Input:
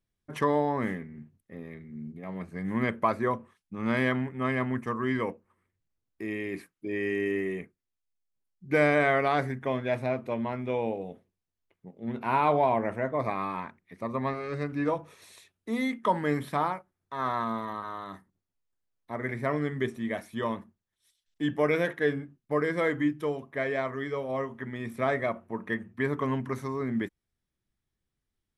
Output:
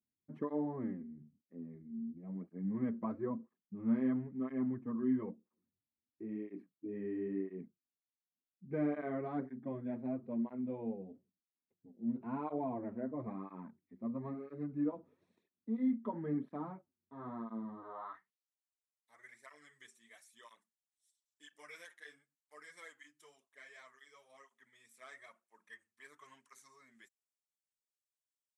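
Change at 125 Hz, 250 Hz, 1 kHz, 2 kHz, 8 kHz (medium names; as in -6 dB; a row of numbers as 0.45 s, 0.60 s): -13.5 dB, -6.0 dB, -19.0 dB, -23.0 dB, no reading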